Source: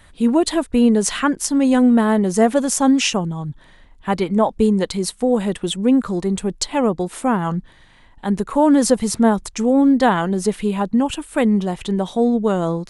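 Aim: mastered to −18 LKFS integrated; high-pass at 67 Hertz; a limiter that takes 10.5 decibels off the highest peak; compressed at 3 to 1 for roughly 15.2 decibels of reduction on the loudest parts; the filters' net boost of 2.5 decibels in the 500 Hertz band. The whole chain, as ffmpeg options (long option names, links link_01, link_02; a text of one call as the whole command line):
ffmpeg -i in.wav -af "highpass=67,equalizer=frequency=500:width_type=o:gain=3,acompressor=threshold=-30dB:ratio=3,volume=13.5dB,alimiter=limit=-9.5dB:level=0:latency=1" out.wav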